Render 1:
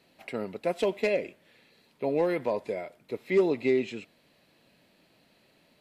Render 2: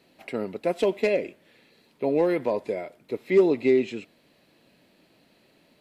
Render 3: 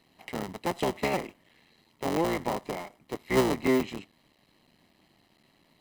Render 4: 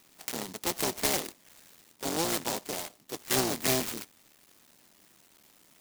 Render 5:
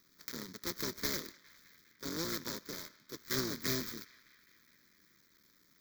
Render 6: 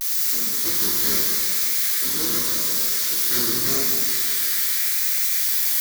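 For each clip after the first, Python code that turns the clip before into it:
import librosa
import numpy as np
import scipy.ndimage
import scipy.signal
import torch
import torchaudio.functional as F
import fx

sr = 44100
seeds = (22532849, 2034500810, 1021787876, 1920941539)

y1 = fx.peak_eq(x, sr, hz=320.0, db=4.0, octaves=1.2)
y1 = y1 * librosa.db_to_amplitude(1.5)
y2 = fx.cycle_switch(y1, sr, every=3, mode='muted')
y2 = y2 + 0.44 * np.pad(y2, (int(1.0 * sr / 1000.0), 0))[:len(y2)]
y2 = y2 * librosa.db_to_amplitude(-2.0)
y3 = np.minimum(y2, 2.0 * 10.0 ** (-26.0 / 20.0) - y2)
y3 = fx.weighting(y3, sr, curve='D')
y3 = fx.noise_mod_delay(y3, sr, seeds[0], noise_hz=5300.0, depth_ms=0.13)
y3 = y3 * librosa.db_to_amplitude(-1.5)
y4 = fx.fixed_phaser(y3, sr, hz=2800.0, stages=6)
y4 = fx.echo_banded(y4, sr, ms=204, feedback_pct=76, hz=2100.0, wet_db=-19)
y4 = y4 * librosa.db_to_amplitude(-4.5)
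y5 = y4 + 0.5 * 10.0 ** (-24.5 / 20.0) * np.diff(np.sign(y4), prepend=np.sign(y4[:1]))
y5 = fx.vibrato(y5, sr, rate_hz=0.84, depth_cents=85.0)
y5 = fx.rev_fdn(y5, sr, rt60_s=2.4, lf_ratio=0.85, hf_ratio=0.95, size_ms=88.0, drr_db=-4.5)
y5 = y5 * librosa.db_to_amplitude(3.5)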